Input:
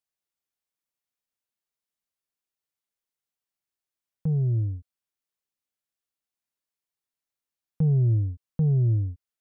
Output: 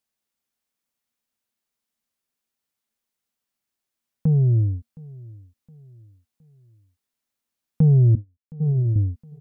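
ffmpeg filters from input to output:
ffmpeg -i in.wav -filter_complex "[0:a]asettb=1/sr,asplit=3[link_01][link_02][link_03];[link_01]atrim=end=8.154[link_04];[link_02]atrim=start=8.15:end=8.96,asetpts=PTS-STARTPTS,afade=type=in:duration=0.004:curve=qsin,afade=type=out:start_time=0.806:duration=0.004:curve=qsin,agate=range=-36dB:threshold=-21dB:ratio=16:detection=peak[link_05];[link_03]atrim=start=8.956[link_06];[link_04][link_05]acrossfade=duration=0.004:curve1=hsin:curve2=qsin[link_07];[link_07][link_06]acrossfade=duration=0.004:curve1=qsin:curve2=hsin,equalizer=frequency=230:width_type=o:width=0.23:gain=10.5,asplit=2[link_08][link_09];[link_09]aecho=0:1:716|1432|2148:0.075|0.0315|0.0132[link_10];[link_08][link_10]amix=inputs=2:normalize=0,volume=6dB" out.wav

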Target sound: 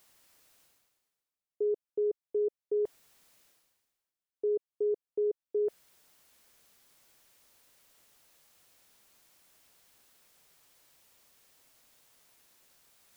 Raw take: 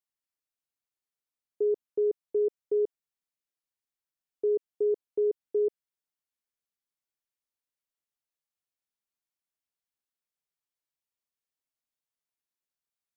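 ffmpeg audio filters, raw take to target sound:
ffmpeg -i in.wav -af "equalizer=frequency=560:width_type=o:width=0.77:gain=2.5,areverse,acompressor=mode=upward:threshold=-35dB:ratio=2.5,areverse,volume=-4.5dB" out.wav

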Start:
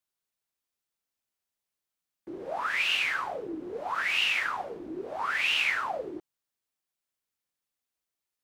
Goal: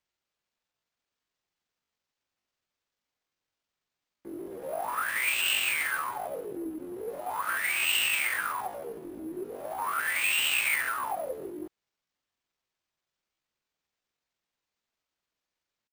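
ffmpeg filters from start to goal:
ffmpeg -i in.wav -af "atempo=0.53,acrusher=samples=4:mix=1:aa=0.000001" out.wav

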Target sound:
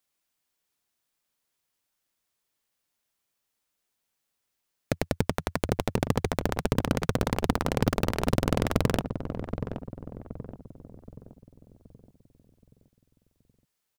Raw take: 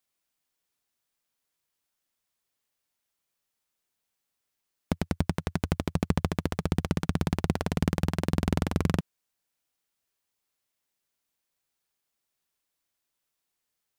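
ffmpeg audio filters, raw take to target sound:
ffmpeg -i in.wav -filter_complex "[0:a]aeval=exprs='0.376*(cos(1*acos(clip(val(0)/0.376,-1,1)))-cos(1*PI/2))+0.119*(cos(7*acos(clip(val(0)/0.376,-1,1)))-cos(7*PI/2))':channel_layout=same,asplit=2[link_01][link_02];[link_02]adelay=774,lowpass=frequency=800:poles=1,volume=-7.5dB,asplit=2[link_03][link_04];[link_04]adelay=774,lowpass=frequency=800:poles=1,volume=0.48,asplit=2[link_05][link_06];[link_06]adelay=774,lowpass=frequency=800:poles=1,volume=0.48,asplit=2[link_07][link_08];[link_08]adelay=774,lowpass=frequency=800:poles=1,volume=0.48,asplit=2[link_09][link_10];[link_10]adelay=774,lowpass=frequency=800:poles=1,volume=0.48,asplit=2[link_11][link_12];[link_12]adelay=774,lowpass=frequency=800:poles=1,volume=0.48[link_13];[link_01][link_03][link_05][link_07][link_09][link_11][link_13]amix=inputs=7:normalize=0" out.wav

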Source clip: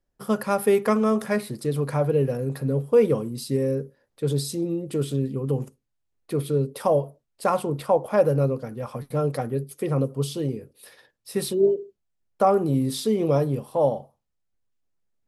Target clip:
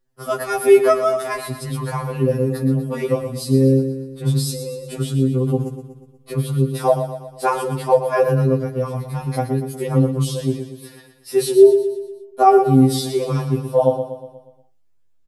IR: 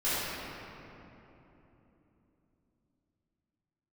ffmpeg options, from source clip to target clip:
-af "adynamicequalizer=threshold=0.01:dfrequency=120:dqfactor=1.1:tfrequency=120:tqfactor=1.1:attack=5:release=100:ratio=0.375:range=3:mode=cutabove:tftype=bell,aecho=1:1:120|240|360|480|600|720:0.316|0.161|0.0823|0.0419|0.0214|0.0109,afftfilt=real='re*2.45*eq(mod(b,6),0)':imag='im*2.45*eq(mod(b,6),0)':win_size=2048:overlap=0.75,volume=7.5dB"

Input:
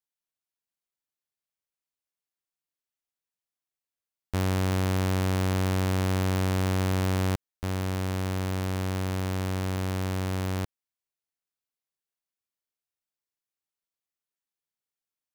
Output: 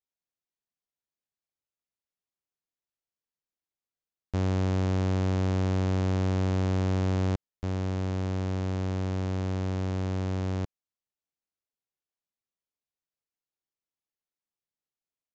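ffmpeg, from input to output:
ffmpeg -i in.wav -filter_complex "[0:a]acrossover=split=770|3100[link_01][link_02][link_03];[link_01]acontrast=65[link_04];[link_04][link_02][link_03]amix=inputs=3:normalize=0,aresample=16000,aresample=44100,volume=-6.5dB" out.wav

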